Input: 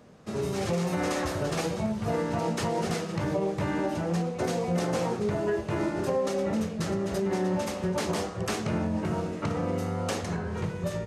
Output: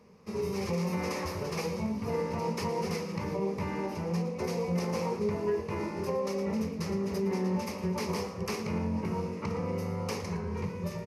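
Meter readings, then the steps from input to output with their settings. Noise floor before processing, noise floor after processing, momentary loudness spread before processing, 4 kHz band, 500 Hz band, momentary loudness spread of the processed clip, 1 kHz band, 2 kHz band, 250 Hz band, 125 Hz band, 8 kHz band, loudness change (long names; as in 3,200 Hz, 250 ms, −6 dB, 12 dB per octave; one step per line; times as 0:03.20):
−36 dBFS, −39 dBFS, 3 LU, −4.5 dB, −3.5 dB, 4 LU, −4.0 dB, −5.0 dB, −3.0 dB, −3.0 dB, −5.5 dB, −3.5 dB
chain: EQ curve with evenly spaced ripples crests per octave 0.84, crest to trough 11 dB
echo with shifted repeats 113 ms, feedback 31%, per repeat +48 Hz, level −15 dB
level −6 dB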